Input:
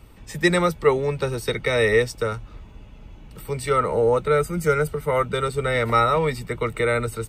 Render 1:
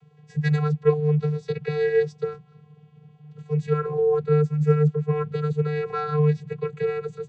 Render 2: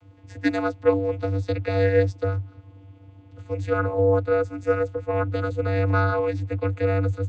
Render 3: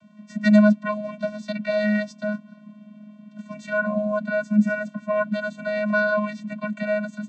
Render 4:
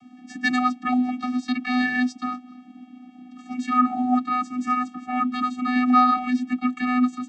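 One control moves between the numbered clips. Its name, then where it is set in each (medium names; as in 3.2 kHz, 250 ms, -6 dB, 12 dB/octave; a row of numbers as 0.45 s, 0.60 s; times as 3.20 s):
vocoder, frequency: 150 Hz, 97 Hz, 210 Hz, 250 Hz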